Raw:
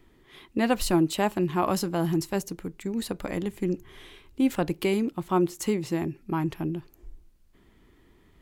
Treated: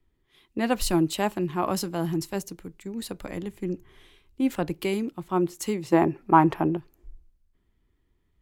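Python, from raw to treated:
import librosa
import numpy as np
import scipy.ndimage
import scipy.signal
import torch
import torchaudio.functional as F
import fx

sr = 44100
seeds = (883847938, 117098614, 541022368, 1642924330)

y = fx.peak_eq(x, sr, hz=830.0, db=15.0, octaves=2.6, at=(5.92, 6.77))
y = fx.band_widen(y, sr, depth_pct=40)
y = y * librosa.db_to_amplitude(-1.5)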